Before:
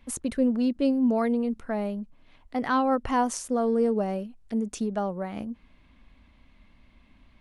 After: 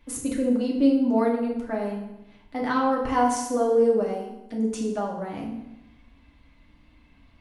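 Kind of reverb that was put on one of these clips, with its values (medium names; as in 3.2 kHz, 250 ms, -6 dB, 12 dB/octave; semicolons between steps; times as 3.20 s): FDN reverb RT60 0.92 s, low-frequency decay 1.05×, high-frequency decay 0.8×, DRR -2.5 dB; trim -2.5 dB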